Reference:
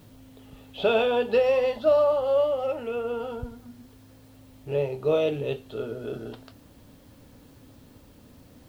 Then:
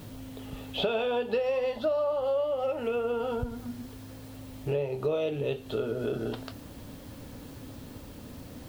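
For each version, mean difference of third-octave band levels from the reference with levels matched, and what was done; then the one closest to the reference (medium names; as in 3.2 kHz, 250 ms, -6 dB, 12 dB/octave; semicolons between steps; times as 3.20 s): 7.5 dB: compression 5:1, threshold -35 dBFS, peak gain reduction 16.5 dB; trim +7.5 dB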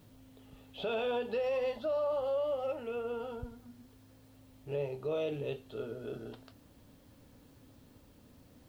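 2.5 dB: peak limiter -19 dBFS, peak gain reduction 8 dB; trim -7.5 dB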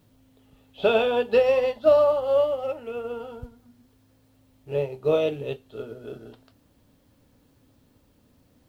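5.5 dB: upward expansion 1.5:1, over -42 dBFS; trim +3.5 dB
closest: second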